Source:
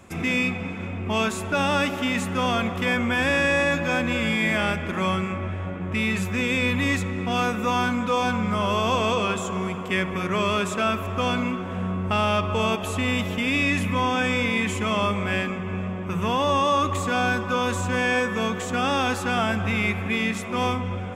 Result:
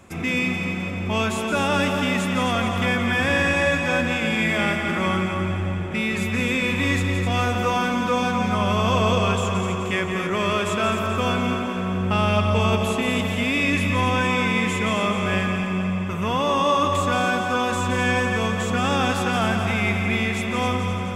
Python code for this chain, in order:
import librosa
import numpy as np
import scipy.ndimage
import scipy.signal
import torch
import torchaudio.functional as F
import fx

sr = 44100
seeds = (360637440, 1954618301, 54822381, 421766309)

y = x + fx.echo_heads(x, sr, ms=86, heads='second and third', feedback_pct=65, wet_db=-8, dry=0)